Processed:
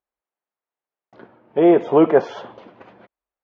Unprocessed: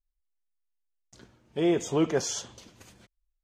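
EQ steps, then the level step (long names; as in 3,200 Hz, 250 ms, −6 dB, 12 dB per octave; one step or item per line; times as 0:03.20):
band-pass filter 160–2,900 Hz
high-frequency loss of the air 220 metres
parametric band 720 Hz +12 dB 2.5 octaves
+4.5 dB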